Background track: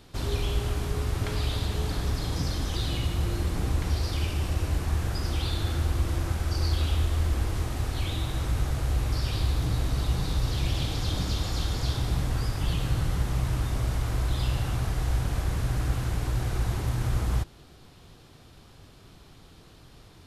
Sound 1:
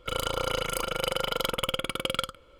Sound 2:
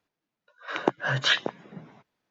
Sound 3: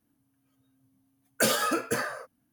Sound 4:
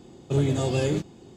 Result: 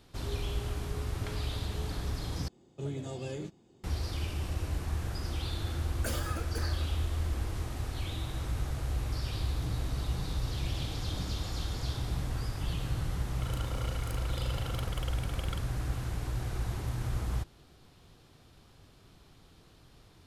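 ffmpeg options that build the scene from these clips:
-filter_complex "[0:a]volume=-6.5dB,asplit=2[a][b];[a]atrim=end=2.484[c];[4:a]atrim=end=1.36,asetpts=PTS-STARTPTS,volume=-14dB[d];[b]atrim=start=3.836[e];[3:a]atrim=end=2.52,asetpts=PTS-STARTPTS,volume=-13.5dB,afade=t=in:d=0.004:c=hsin,afade=t=out:st=2.516:d=0.004:c=hsin,adelay=4640[f];[1:a]atrim=end=2.59,asetpts=PTS-STARTPTS,volume=-15dB,afade=t=in:d=0.004:c=hsin,afade=t=out:st=2.586:d=0.004:c=hsin,adelay=13340[g];[c][d]acrossfade=d=0.004:c1=hsin:c2=hsin[h];[h][e]acrossfade=d=0.004:c1=hsin:c2=hsin[i];[i][f][g]amix=inputs=3:normalize=0"

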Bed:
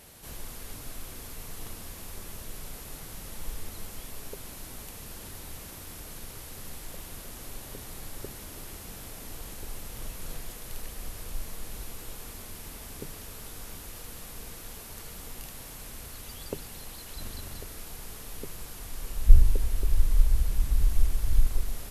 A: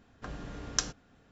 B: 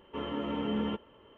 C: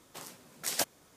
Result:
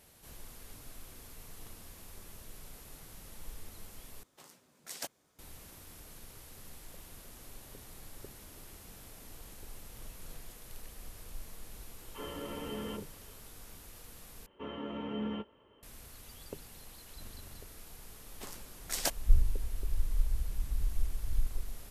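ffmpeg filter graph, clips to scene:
-filter_complex "[3:a]asplit=2[a][b];[2:a]asplit=2[c][d];[0:a]volume=-9dB[e];[c]acrossover=split=230|850[f][g][h];[g]adelay=30[i];[f]adelay=60[j];[j][i][h]amix=inputs=3:normalize=0[k];[d]asplit=2[l][m];[m]adelay=19,volume=-13dB[n];[l][n]amix=inputs=2:normalize=0[o];[e]asplit=3[p][q][r];[p]atrim=end=4.234[s];[a]atrim=end=1.16,asetpts=PTS-STARTPTS,volume=-10.5dB[t];[q]atrim=start=5.386:end=14.464[u];[o]atrim=end=1.37,asetpts=PTS-STARTPTS,volume=-6dB[v];[r]atrim=start=15.826[w];[k]atrim=end=1.37,asetpts=PTS-STARTPTS,volume=-4dB,afade=t=in:d=0.004:c=hsin,afade=t=out:st=1.366:d=0.004:c=hsin,adelay=12010[x];[b]atrim=end=1.16,asetpts=PTS-STARTPTS,volume=-2dB,afade=t=in:d=0.004:c=hsin,afade=t=out:st=1.156:d=0.004:c=hsin,adelay=18260[y];[s][t]acrossfade=d=0.004:c1=hsin:c2=hsin[z];[z][u]acrossfade=d=0.004:c1=hsin:c2=hsin[aa];[aa][v]acrossfade=d=0.004:c1=hsin:c2=hsin[ab];[ab][w]acrossfade=d=0.004:c1=hsin:c2=hsin[ac];[ac][x][y]amix=inputs=3:normalize=0"

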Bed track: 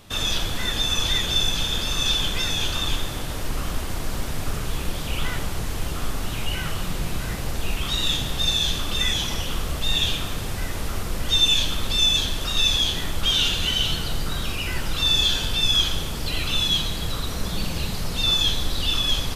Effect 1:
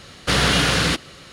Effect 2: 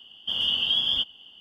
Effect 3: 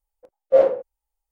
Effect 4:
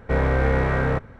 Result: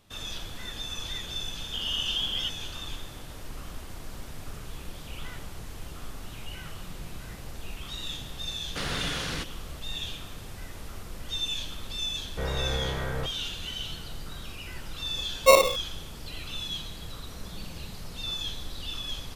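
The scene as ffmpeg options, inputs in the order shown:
-filter_complex "[0:a]volume=-13dB[a];[2:a]equalizer=f=3.8k:t=o:w=0.44:g=-6[b];[4:a]bandreject=f=270:w=8.7[c];[3:a]acrusher=samples=27:mix=1:aa=0.000001[d];[b]atrim=end=1.4,asetpts=PTS-STARTPTS,volume=-4dB,afade=t=in:d=0.004:c=hsin,afade=t=out:st=1.396:d=0.004:c=hsin,adelay=1460[e];[1:a]atrim=end=1.32,asetpts=PTS-STARTPTS,volume=-14.5dB,afade=t=in:d=0.004:c=hsin,afade=t=out:st=1.316:d=0.004:c=hsin,adelay=8480[f];[c]atrim=end=1.19,asetpts=PTS-STARTPTS,volume=-10.5dB,afade=t=in:d=0.004:c=hsin,afade=t=out:st=1.186:d=0.004:c=hsin,adelay=12280[g];[d]atrim=end=1.31,asetpts=PTS-STARTPTS,volume=-2dB,afade=t=in:d=0.004:c=hsin,afade=t=out:st=1.306:d=0.004:c=hsin,adelay=14940[h];[a][e][f][g][h]amix=inputs=5:normalize=0"

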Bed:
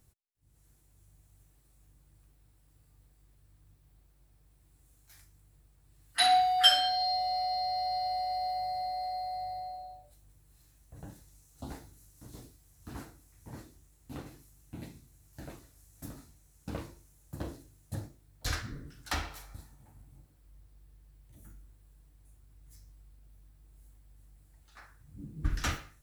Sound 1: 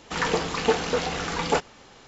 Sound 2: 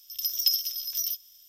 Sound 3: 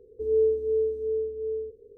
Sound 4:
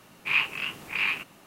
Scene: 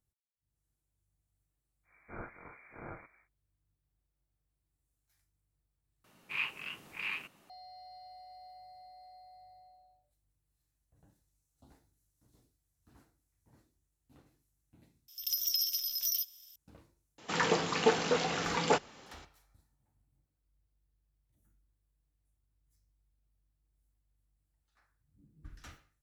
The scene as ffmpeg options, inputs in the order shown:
-filter_complex "[4:a]asplit=2[a][b];[0:a]volume=-19.5dB[c];[a]lowpass=f=2.1k:t=q:w=0.5098,lowpass=f=2.1k:t=q:w=0.6013,lowpass=f=2.1k:t=q:w=0.9,lowpass=f=2.1k:t=q:w=2.563,afreqshift=-2500[d];[2:a]alimiter=limit=-18.5dB:level=0:latency=1:release=67[e];[1:a]highpass=f=100:w=0.5412,highpass=f=100:w=1.3066[f];[c]asplit=3[g][h][i];[g]atrim=end=6.044[j];[b]atrim=end=1.46,asetpts=PTS-STARTPTS,volume=-11dB[k];[h]atrim=start=7.496:end=15.084[l];[e]atrim=end=1.48,asetpts=PTS-STARTPTS,volume=-2dB[m];[i]atrim=start=16.556[n];[d]atrim=end=1.46,asetpts=PTS-STARTPTS,volume=-12dB,afade=t=in:d=0.1,afade=t=out:st=1.36:d=0.1,adelay=1830[o];[f]atrim=end=2.07,asetpts=PTS-STARTPTS,volume=-4.5dB,afade=t=in:d=0.004:c=hsin,afade=t=out:st=2.066:d=0.004:c=hsin,adelay=17180[p];[j][k]acrossfade=d=0.004:c1=hsin:c2=hsin[q];[q][l]acrossfade=d=0.004:c1=hsin:c2=hsin[r];[r][m]acrossfade=d=0.004:c1=hsin:c2=hsin[s];[s][n]acrossfade=d=0.004:c1=hsin:c2=hsin[t];[t][o][p]amix=inputs=3:normalize=0"

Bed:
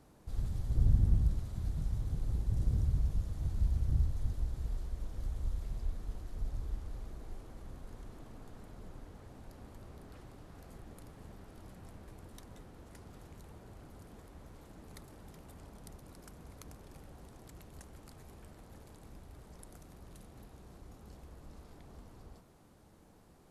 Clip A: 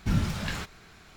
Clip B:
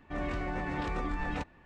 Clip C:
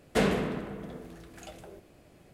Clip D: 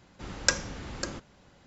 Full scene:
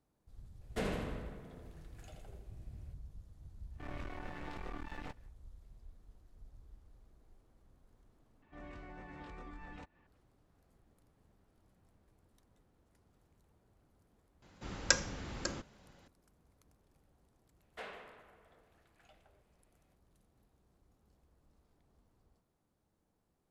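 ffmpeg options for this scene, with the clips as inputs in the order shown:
-filter_complex "[3:a]asplit=2[a][b];[2:a]asplit=2[c][d];[0:a]volume=-18.5dB[e];[a]aecho=1:1:82|164|246|328|410|492:0.473|0.232|0.114|0.0557|0.0273|0.0134[f];[c]aeval=exprs='max(val(0),0)':c=same[g];[d]acompressor=mode=upward:threshold=-43dB:ratio=2.5:attack=3.2:release=140:knee=2.83:detection=peak[h];[b]acrossover=split=560 3900:gain=0.0708 1 0.224[i][j][k];[i][j][k]amix=inputs=3:normalize=0[l];[e]asplit=2[m][n];[m]atrim=end=8.424[o];[h]atrim=end=1.65,asetpts=PTS-STARTPTS,volume=-16dB[p];[n]atrim=start=10.066[q];[f]atrim=end=2.33,asetpts=PTS-STARTPTS,volume=-12.5dB,afade=t=in:d=0.004:c=hsin,afade=t=out:st=2.326:d=0.004:c=hsin,adelay=610[r];[g]atrim=end=1.65,asetpts=PTS-STARTPTS,volume=-8dB,afade=t=in:d=0.1,afade=t=out:st=1.55:d=0.1,adelay=162729S[s];[4:a]atrim=end=1.66,asetpts=PTS-STARTPTS,volume=-4dB,afade=t=in:d=0.004:c=hsin,afade=t=out:st=1.656:d=0.004:c=hsin,adelay=14420[t];[l]atrim=end=2.33,asetpts=PTS-STARTPTS,volume=-15.5dB,afade=t=in:d=0.004:c=hsin,afade=t=out:st=2.326:d=0.004:c=hsin,adelay=17620[u];[o][p]acrossfade=d=0.004:c1=hsin:c2=hsin[v];[v][q]acrossfade=d=0.004:c1=hsin:c2=hsin[w];[w][r][s][t][u]amix=inputs=5:normalize=0"

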